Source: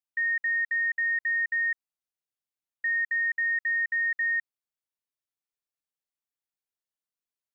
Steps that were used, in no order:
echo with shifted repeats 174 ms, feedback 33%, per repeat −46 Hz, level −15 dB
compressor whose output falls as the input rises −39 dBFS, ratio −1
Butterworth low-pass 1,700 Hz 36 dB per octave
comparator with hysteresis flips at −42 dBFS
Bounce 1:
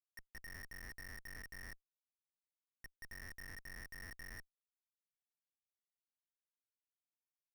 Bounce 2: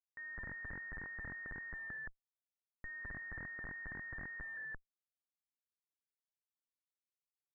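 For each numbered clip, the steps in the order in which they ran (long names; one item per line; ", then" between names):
compressor whose output falls as the input rises, then Butterworth low-pass, then echo with shifted repeats, then comparator with hysteresis
echo with shifted repeats, then compressor whose output falls as the input rises, then comparator with hysteresis, then Butterworth low-pass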